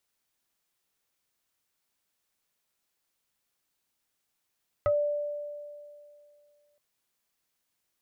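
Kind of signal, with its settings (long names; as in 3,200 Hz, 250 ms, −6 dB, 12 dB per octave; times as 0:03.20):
two-operator FM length 1.92 s, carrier 587 Hz, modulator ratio 1.17, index 1.1, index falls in 0.12 s exponential, decay 2.42 s, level −20.5 dB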